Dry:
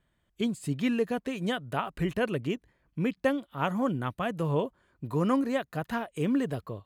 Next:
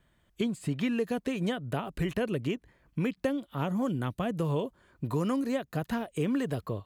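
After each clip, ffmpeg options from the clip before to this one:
-filter_complex "[0:a]acrossover=split=570|3000[s0][s1][s2];[s0]acompressor=threshold=0.02:ratio=4[s3];[s1]acompressor=threshold=0.00562:ratio=4[s4];[s2]acompressor=threshold=0.002:ratio=4[s5];[s3][s4][s5]amix=inputs=3:normalize=0,volume=1.88"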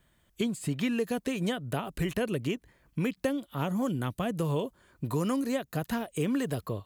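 -af "highshelf=f=5300:g=9"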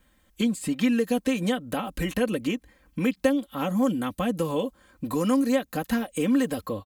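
-af "aecho=1:1:3.8:0.8,volume=1.33"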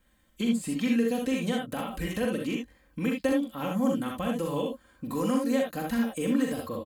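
-af "aecho=1:1:42|64|77:0.501|0.596|0.447,volume=0.531"

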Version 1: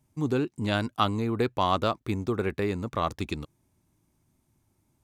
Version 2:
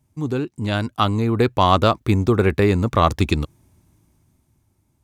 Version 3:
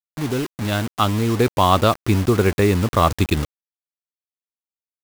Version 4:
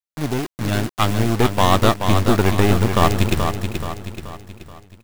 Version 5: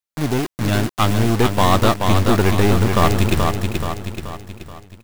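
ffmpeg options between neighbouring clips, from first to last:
-af "equalizer=f=70:w=0.84:g=6,dynaudnorm=f=220:g=11:m=3.76,volume=1.26"
-af "acrusher=bits=4:mix=0:aa=0.000001"
-filter_complex "[0:a]aeval=exprs='0.891*(cos(1*acos(clip(val(0)/0.891,-1,1)))-cos(1*PI/2))+0.112*(cos(8*acos(clip(val(0)/0.891,-1,1)))-cos(8*PI/2))':c=same,asplit=2[s0][s1];[s1]aecho=0:1:429|858|1287|1716|2145:0.473|0.218|0.1|0.0461|0.0212[s2];[s0][s2]amix=inputs=2:normalize=0,volume=0.891"
-af "asoftclip=type=tanh:threshold=0.335,volume=1.5"

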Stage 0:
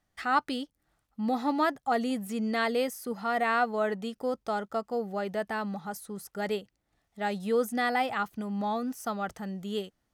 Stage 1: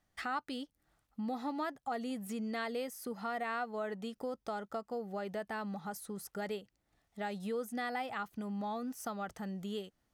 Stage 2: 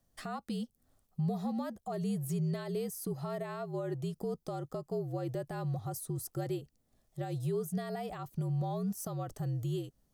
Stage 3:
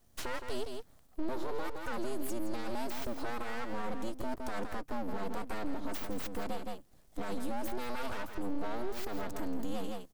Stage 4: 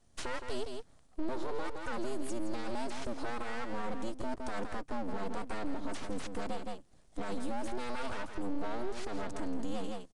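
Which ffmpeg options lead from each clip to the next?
-af "acompressor=threshold=0.0126:ratio=2.5,volume=0.891"
-af "alimiter=level_in=2.24:limit=0.0631:level=0:latency=1:release=66,volume=0.447,equalizer=f=1900:t=o:w=2.6:g=-14.5,afreqshift=-58,volume=2.37"
-af "aeval=exprs='abs(val(0))':c=same,aecho=1:1:165:0.335,alimiter=level_in=3.35:limit=0.0631:level=0:latency=1:release=162,volume=0.299,volume=2.82"
-af "aresample=22050,aresample=44100"

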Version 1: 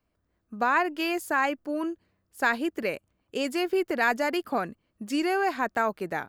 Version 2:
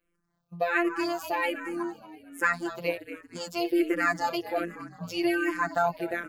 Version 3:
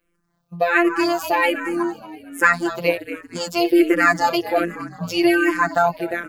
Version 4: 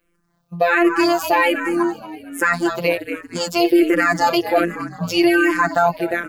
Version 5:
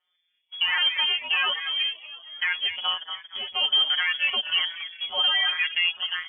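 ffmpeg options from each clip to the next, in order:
-filter_complex "[0:a]afftfilt=real='hypot(re,im)*cos(PI*b)':imag='0':win_size=1024:overlap=0.75,asplit=6[s0][s1][s2][s3][s4][s5];[s1]adelay=232,afreqshift=-32,volume=0.211[s6];[s2]adelay=464,afreqshift=-64,volume=0.101[s7];[s3]adelay=696,afreqshift=-96,volume=0.0484[s8];[s4]adelay=928,afreqshift=-128,volume=0.0234[s9];[s5]adelay=1160,afreqshift=-160,volume=0.0112[s10];[s0][s6][s7][s8][s9][s10]amix=inputs=6:normalize=0,asplit=2[s11][s12];[s12]afreqshift=-1.3[s13];[s11][s13]amix=inputs=2:normalize=1,volume=1.88"
-af "dynaudnorm=f=130:g=11:m=1.41,volume=2.24"
-af "alimiter=limit=0.335:level=0:latency=1:release=17,volume=1.5"
-af "acrusher=bits=4:mode=log:mix=0:aa=0.000001,lowpass=f=3000:t=q:w=0.5098,lowpass=f=3000:t=q:w=0.6013,lowpass=f=3000:t=q:w=0.9,lowpass=f=3000:t=q:w=2.563,afreqshift=-3500,volume=0.398"

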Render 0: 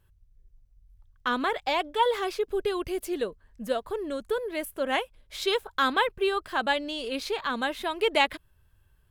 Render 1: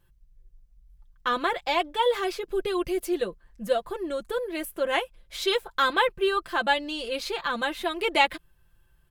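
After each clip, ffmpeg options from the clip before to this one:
-af "aecho=1:1:5.8:0.7"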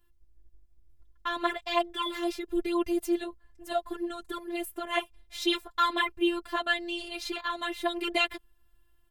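-af "afftfilt=real='hypot(re,im)*cos(PI*b)':imag='0':win_size=512:overlap=0.75"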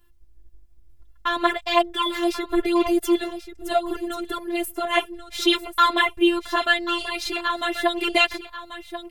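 -af "aecho=1:1:1087:0.251,volume=2.51"

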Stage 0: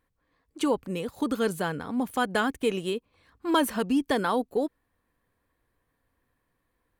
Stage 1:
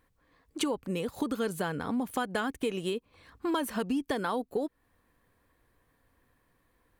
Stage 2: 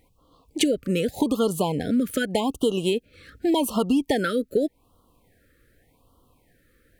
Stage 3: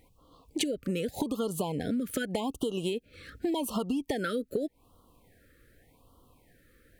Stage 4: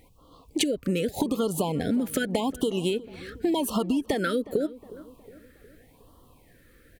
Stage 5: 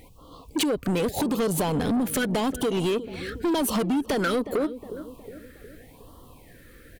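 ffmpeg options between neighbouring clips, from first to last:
-af "acompressor=threshold=0.0178:ratio=4,volume=1.88"
-af "afftfilt=real='re*(1-between(b*sr/1024,820*pow(2000/820,0.5+0.5*sin(2*PI*0.85*pts/sr))/1.41,820*pow(2000/820,0.5+0.5*sin(2*PI*0.85*pts/sr))*1.41))':imag='im*(1-between(b*sr/1024,820*pow(2000/820,0.5+0.5*sin(2*PI*0.85*pts/sr))/1.41,820*pow(2000/820,0.5+0.5*sin(2*PI*0.85*pts/sr))*1.41))':win_size=1024:overlap=0.75,volume=2.82"
-af "acompressor=threshold=0.0398:ratio=6"
-filter_complex "[0:a]asplit=2[s0][s1];[s1]adelay=363,lowpass=f=1500:p=1,volume=0.133,asplit=2[s2][s3];[s3]adelay=363,lowpass=f=1500:p=1,volume=0.52,asplit=2[s4][s5];[s5]adelay=363,lowpass=f=1500:p=1,volume=0.52,asplit=2[s6][s7];[s7]adelay=363,lowpass=f=1500:p=1,volume=0.52[s8];[s0][s2][s4][s6][s8]amix=inputs=5:normalize=0,volume=1.78"
-af "asoftclip=type=tanh:threshold=0.0422,volume=2.24"

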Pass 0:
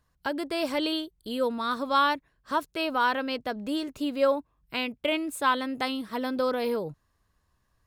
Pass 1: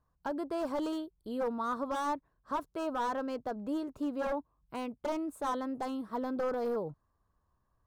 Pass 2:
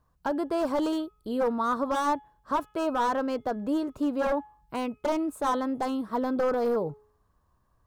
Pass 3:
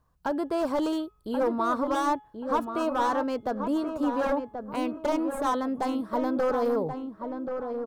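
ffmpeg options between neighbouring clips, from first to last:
-af "aeval=exprs='0.0708*(abs(mod(val(0)/0.0708+3,4)-2)-1)':c=same,highshelf=f=1600:t=q:w=1.5:g=-11,volume=0.596"
-af "bandreject=f=423.3:t=h:w=4,bandreject=f=846.6:t=h:w=4,bandreject=f=1269.9:t=h:w=4,bandreject=f=1693.2:t=h:w=4,bandreject=f=2116.5:t=h:w=4,bandreject=f=2539.8:t=h:w=4,bandreject=f=2963.1:t=h:w=4,bandreject=f=3386.4:t=h:w=4,volume=2.24"
-filter_complex "[0:a]asplit=2[s0][s1];[s1]adelay=1082,lowpass=f=1300:p=1,volume=0.501,asplit=2[s2][s3];[s3]adelay=1082,lowpass=f=1300:p=1,volume=0.34,asplit=2[s4][s5];[s5]adelay=1082,lowpass=f=1300:p=1,volume=0.34,asplit=2[s6][s7];[s7]adelay=1082,lowpass=f=1300:p=1,volume=0.34[s8];[s0][s2][s4][s6][s8]amix=inputs=5:normalize=0"

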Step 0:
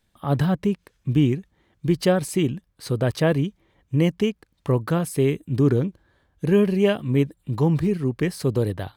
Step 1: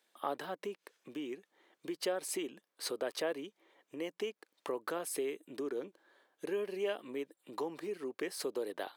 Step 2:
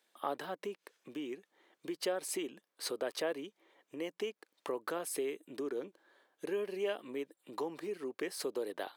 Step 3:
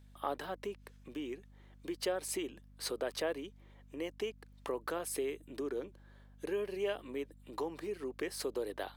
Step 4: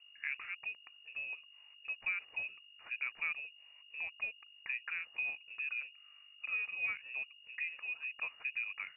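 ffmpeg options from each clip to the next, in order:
-af "acompressor=threshold=0.0398:ratio=6,highpass=f=350:w=0.5412,highpass=f=350:w=1.3066,volume=0.841"
-af anull
-af "aeval=exprs='val(0)+0.00141*(sin(2*PI*50*n/s)+sin(2*PI*2*50*n/s)/2+sin(2*PI*3*50*n/s)/3+sin(2*PI*4*50*n/s)/4+sin(2*PI*5*50*n/s)/5)':c=same"
-af "highshelf=f=2200:g=-12,lowpass=f=2500:t=q:w=0.5098,lowpass=f=2500:t=q:w=0.6013,lowpass=f=2500:t=q:w=0.9,lowpass=f=2500:t=q:w=2.563,afreqshift=-2900,volume=0.841"

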